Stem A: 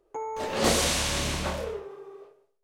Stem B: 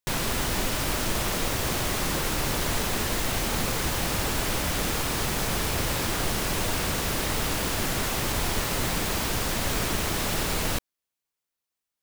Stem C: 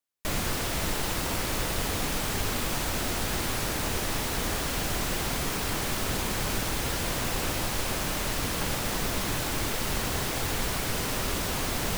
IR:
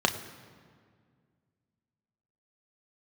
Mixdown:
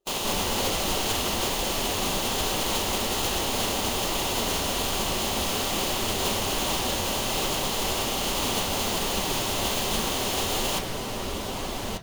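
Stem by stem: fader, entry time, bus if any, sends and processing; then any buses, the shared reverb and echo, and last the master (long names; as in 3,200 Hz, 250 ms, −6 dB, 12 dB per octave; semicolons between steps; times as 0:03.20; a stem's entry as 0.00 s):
−8.0 dB, 0.00 s, no send, no processing
+1.0 dB, 0.00 s, send −10.5 dB, compressing power law on the bin magnitudes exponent 0.29
+1.0 dB, 0.00 s, send −16.5 dB, no processing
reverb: on, RT60 1.9 s, pre-delay 3 ms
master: high-shelf EQ 8,900 Hz −6.5 dB; flanger 1.2 Hz, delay 5.1 ms, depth 6.2 ms, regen −52%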